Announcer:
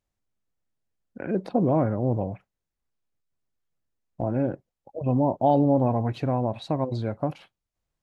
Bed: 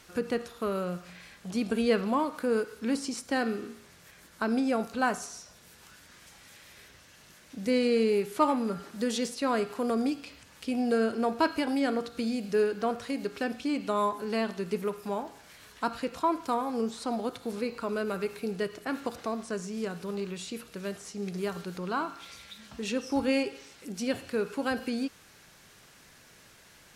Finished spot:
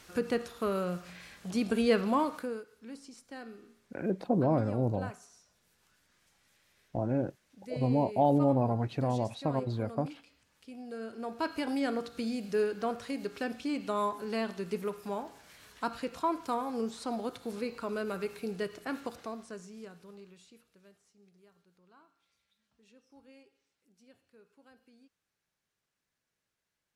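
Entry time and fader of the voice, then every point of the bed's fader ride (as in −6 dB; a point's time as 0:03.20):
2.75 s, −5.0 dB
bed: 0:02.34 −0.5 dB
0:02.63 −16.5 dB
0:10.88 −16.5 dB
0:11.68 −3.5 dB
0:18.93 −3.5 dB
0:21.45 −30.5 dB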